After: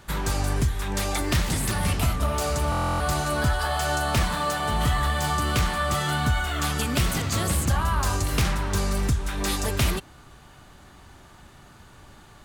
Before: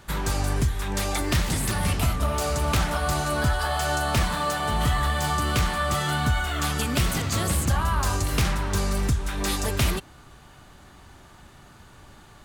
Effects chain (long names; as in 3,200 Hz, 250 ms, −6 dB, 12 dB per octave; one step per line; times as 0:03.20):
buffer that repeats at 0:02.70, samples 1,024, times 12